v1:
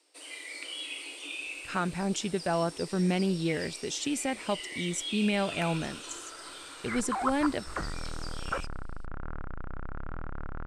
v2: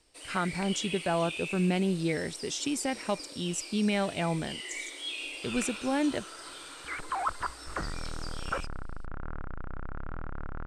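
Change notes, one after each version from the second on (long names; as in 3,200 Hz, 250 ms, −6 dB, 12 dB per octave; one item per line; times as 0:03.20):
speech: entry −1.40 s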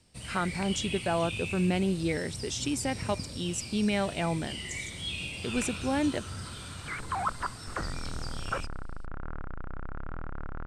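first sound: remove Chebyshev high-pass filter 280 Hz, order 8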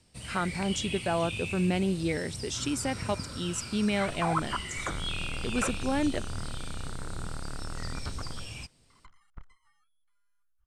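second sound: entry −2.90 s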